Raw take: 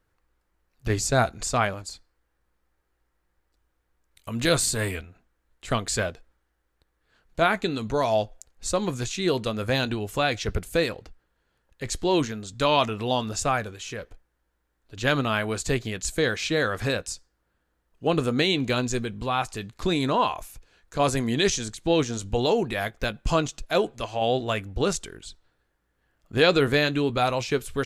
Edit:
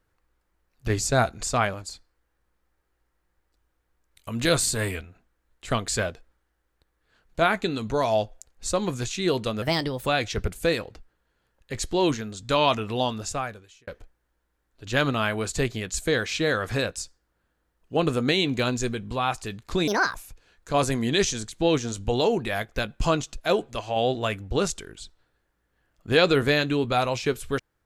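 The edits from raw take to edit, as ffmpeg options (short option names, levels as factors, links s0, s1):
-filter_complex "[0:a]asplit=6[s0][s1][s2][s3][s4][s5];[s0]atrim=end=9.624[s6];[s1]atrim=start=9.62:end=10.17,asetpts=PTS-STARTPTS,asetrate=54684,aresample=44100,atrim=end_sample=19560,asetpts=PTS-STARTPTS[s7];[s2]atrim=start=10.166:end=13.98,asetpts=PTS-STARTPTS,afade=t=out:st=2.934:d=0.88[s8];[s3]atrim=start=13.98:end=19.984,asetpts=PTS-STARTPTS,afade=t=in:d=0.004:c=hsin[s9];[s4]atrim=start=19.98:end=20.4,asetpts=PTS-STARTPTS,asetrate=67914,aresample=44100,atrim=end_sample=12027,asetpts=PTS-STARTPTS[s10];[s5]atrim=start=20.396[s11];[s6][s7]acrossfade=d=0.004:c1=hsin:c2=hsin[s12];[s8][s9]concat=n=2:v=0:a=1[s13];[s12][s13]acrossfade=d=0.004:c1=hsin:c2=hsin[s14];[s14][s10]acrossfade=d=0.004:c1=hsin:c2=hsin[s15];[s15][s11]acrossfade=d=0.004:c1=hsin:c2=hsin"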